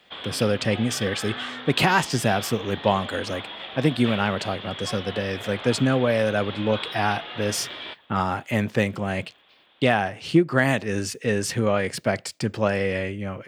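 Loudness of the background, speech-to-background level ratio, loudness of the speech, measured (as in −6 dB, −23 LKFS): −34.5 LKFS, 10.0 dB, −24.5 LKFS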